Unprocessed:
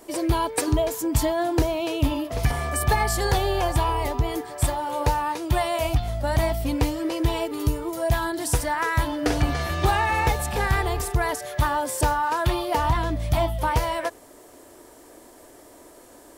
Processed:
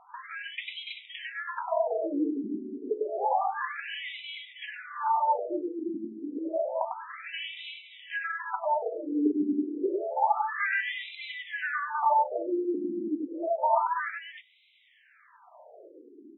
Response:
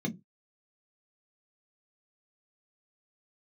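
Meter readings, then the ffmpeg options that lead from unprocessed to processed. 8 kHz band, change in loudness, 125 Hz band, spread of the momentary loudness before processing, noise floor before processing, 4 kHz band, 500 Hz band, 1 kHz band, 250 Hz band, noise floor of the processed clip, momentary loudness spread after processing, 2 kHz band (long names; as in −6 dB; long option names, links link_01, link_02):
below −40 dB, −6.0 dB, below −35 dB, 4 LU, −49 dBFS, −8.0 dB, −5.5 dB, −3.5 dB, −4.5 dB, −60 dBFS, 13 LU, −4.0 dB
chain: -af "aecho=1:1:99|326:0.668|0.501,afftfilt=real='re*between(b*sr/1024,290*pow(2900/290,0.5+0.5*sin(2*PI*0.29*pts/sr))/1.41,290*pow(2900/290,0.5+0.5*sin(2*PI*0.29*pts/sr))*1.41)':imag='im*between(b*sr/1024,290*pow(2900/290,0.5+0.5*sin(2*PI*0.29*pts/sr))/1.41,290*pow(2900/290,0.5+0.5*sin(2*PI*0.29*pts/sr))*1.41)':win_size=1024:overlap=0.75"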